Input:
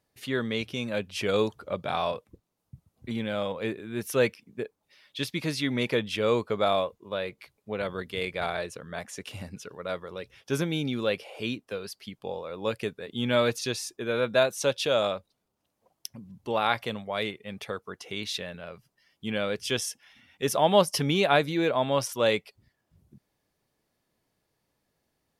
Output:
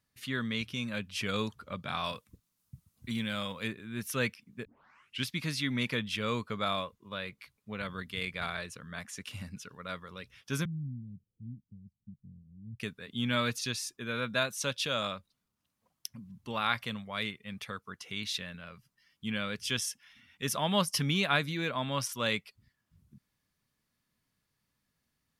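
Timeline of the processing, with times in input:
2.04–3.68 high shelf 3800 Hz +10 dB
4.65 tape start 0.61 s
10.65–12.8 inverse Chebyshev low-pass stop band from 620 Hz, stop band 60 dB
whole clip: band shelf 520 Hz -10 dB; gain -2 dB

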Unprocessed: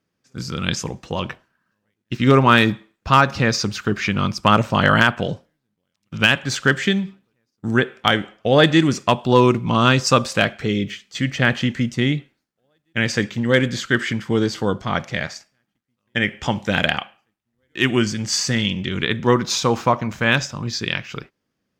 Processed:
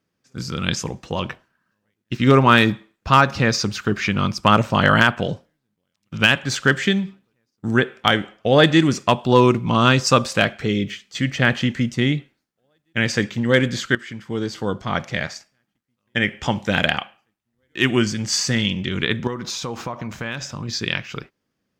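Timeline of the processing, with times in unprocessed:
13.95–15.09 fade in, from -15 dB
19.27–20.69 compressor 5:1, threshold -25 dBFS

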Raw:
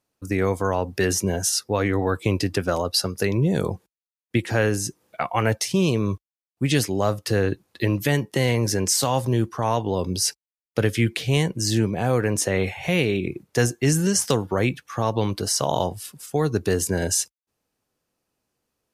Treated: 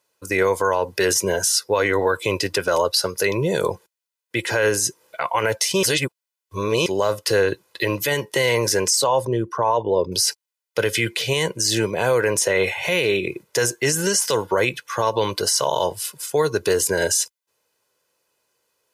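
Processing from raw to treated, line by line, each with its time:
5.83–6.86 reverse
8.9–10.12 formant sharpening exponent 1.5
whole clip: HPF 600 Hz 6 dB/oct; comb 2 ms, depth 55%; maximiser +16.5 dB; gain -8.5 dB

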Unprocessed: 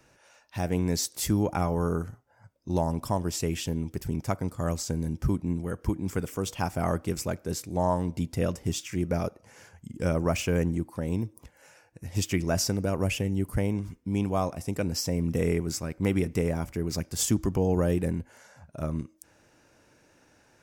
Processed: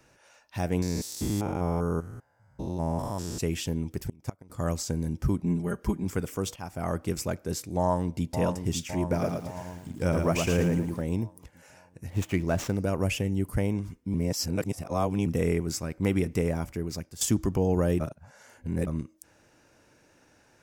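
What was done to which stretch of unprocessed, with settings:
0.82–3.4 stepped spectrum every 0.2 s
4.03–4.5 flipped gate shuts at -20 dBFS, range -25 dB
5.42–6.04 comb 5 ms, depth 78%
6.56–7.08 fade in, from -13.5 dB
7.77–8.38 echo throw 0.56 s, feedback 60%, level -7 dB
9.01–11.02 lo-fi delay 0.112 s, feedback 35%, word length 9-bit, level -4 dB
12.1–12.76 median filter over 9 samples
14.14–15.26 reverse
16.46–17.21 fade out equal-power, to -14 dB
18–18.87 reverse

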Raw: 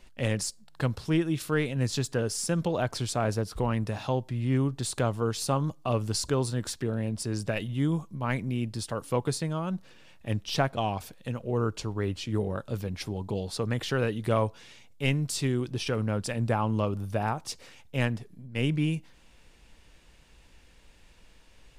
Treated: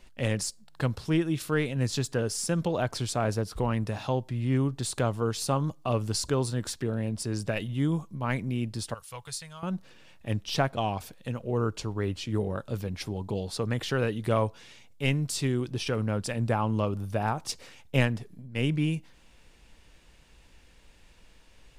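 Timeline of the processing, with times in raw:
8.94–9.63 passive tone stack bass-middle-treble 10-0-10
17.24–18.42 transient shaper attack +7 dB, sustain +2 dB

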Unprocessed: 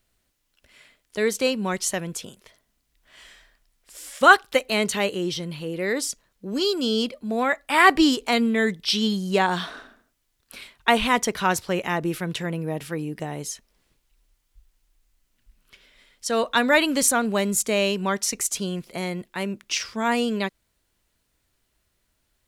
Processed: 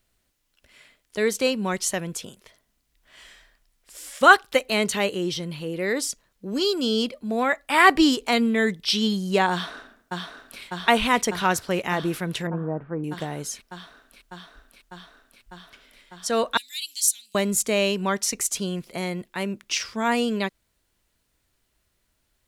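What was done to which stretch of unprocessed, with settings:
9.51–10.61 echo throw 0.6 s, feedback 85%, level -4 dB
12.47–13.04 LPF 1300 Hz 24 dB/oct
16.57–17.35 inverse Chebyshev high-pass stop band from 1400 Hz, stop band 50 dB

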